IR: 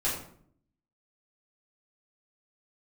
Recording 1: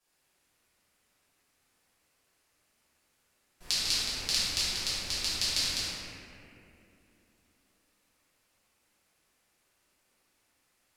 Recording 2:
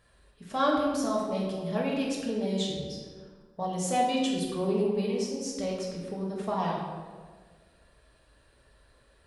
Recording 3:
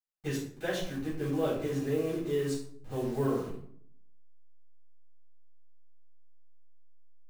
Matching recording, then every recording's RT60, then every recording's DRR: 3; 2.8 s, 1.6 s, 0.60 s; -13.5 dB, -3.5 dB, -10.0 dB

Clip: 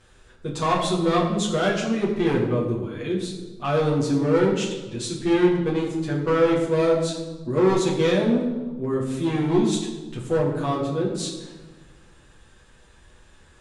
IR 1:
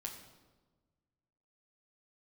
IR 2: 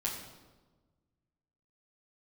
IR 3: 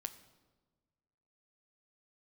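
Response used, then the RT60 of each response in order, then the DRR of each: 2; 1.3 s, 1.3 s, 1.4 s; 0.0 dB, -5.0 dB, 8.5 dB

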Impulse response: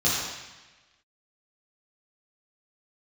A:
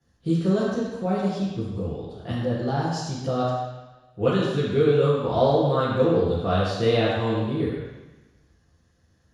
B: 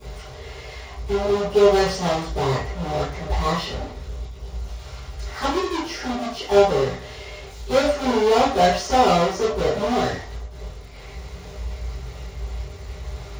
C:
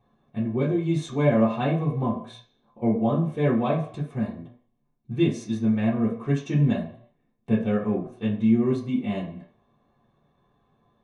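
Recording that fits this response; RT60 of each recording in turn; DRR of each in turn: A; 1.2 s, 0.40 s, 0.60 s; -9.5 dB, -18.0 dB, -8.5 dB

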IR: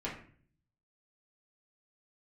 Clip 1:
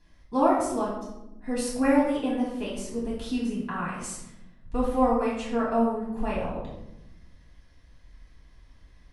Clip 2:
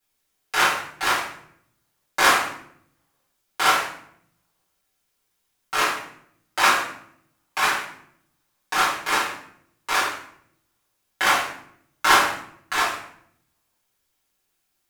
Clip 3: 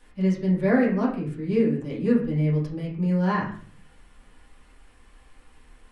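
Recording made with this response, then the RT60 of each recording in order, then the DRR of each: 3; 0.90 s, 0.65 s, 0.50 s; -7.0 dB, -9.5 dB, -7.0 dB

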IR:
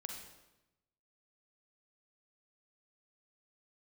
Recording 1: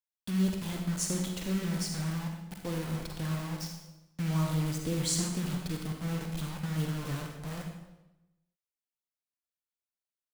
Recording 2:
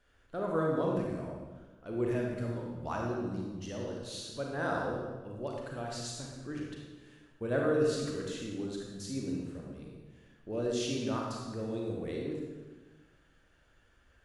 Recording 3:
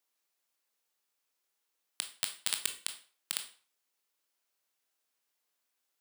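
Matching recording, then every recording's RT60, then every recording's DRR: 1; 0.95 s, 1.3 s, 0.40 s; 2.0 dB, -1.5 dB, 5.5 dB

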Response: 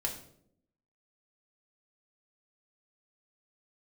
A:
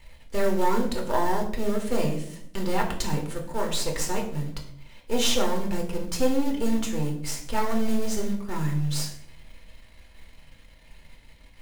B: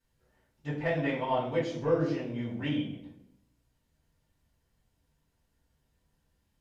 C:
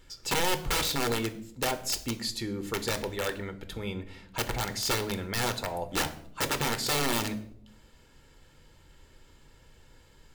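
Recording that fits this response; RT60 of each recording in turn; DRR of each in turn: A; 0.70 s, 0.70 s, 0.70 s; 0.0 dB, -9.5 dB, 8.5 dB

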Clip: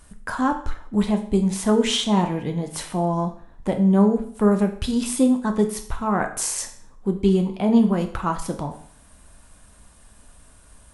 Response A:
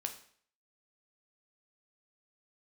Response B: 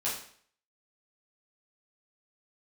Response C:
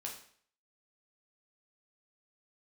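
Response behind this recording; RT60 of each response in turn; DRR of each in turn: A; 0.55 s, 0.55 s, 0.55 s; 4.5 dB, -9.0 dB, -1.5 dB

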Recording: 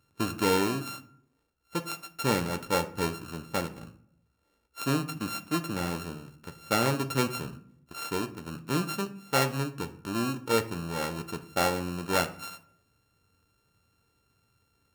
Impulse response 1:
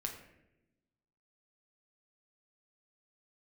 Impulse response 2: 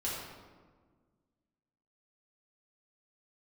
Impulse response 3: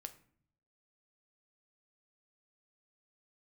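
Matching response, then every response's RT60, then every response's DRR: 3; 0.90 s, 1.5 s, 0.55 s; 1.5 dB, -7.5 dB, 8.0 dB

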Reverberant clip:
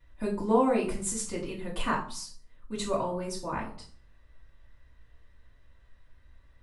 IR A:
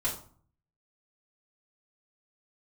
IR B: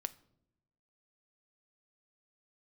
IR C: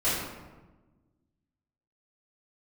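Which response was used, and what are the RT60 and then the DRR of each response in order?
A; 0.50 s, no single decay rate, 1.2 s; -8.5 dB, 13.0 dB, -14.5 dB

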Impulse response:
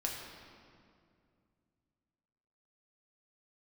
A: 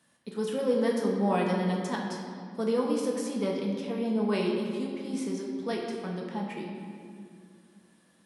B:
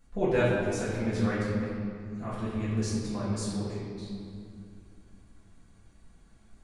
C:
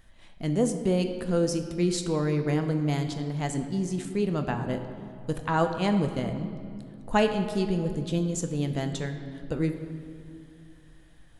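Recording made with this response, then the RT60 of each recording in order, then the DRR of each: A; 2.3 s, 2.3 s, 2.4 s; -1.5 dB, -11.0 dB, 6.0 dB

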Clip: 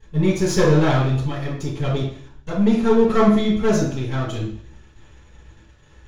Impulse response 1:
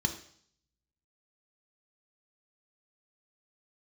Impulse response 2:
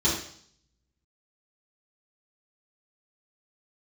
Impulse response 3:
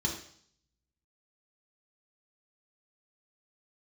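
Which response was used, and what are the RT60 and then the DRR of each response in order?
2; 0.60 s, 0.60 s, 0.60 s; 4.5 dB, -10.0 dB, -1.5 dB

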